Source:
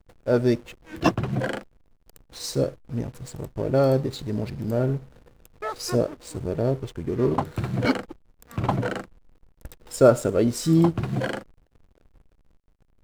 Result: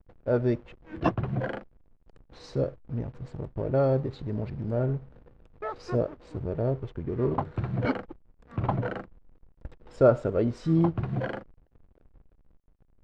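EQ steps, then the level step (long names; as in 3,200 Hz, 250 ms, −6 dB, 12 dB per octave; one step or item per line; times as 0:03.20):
dynamic equaliser 260 Hz, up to −5 dB, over −34 dBFS, Q 0.78
head-to-tape spacing loss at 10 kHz 35 dB
0.0 dB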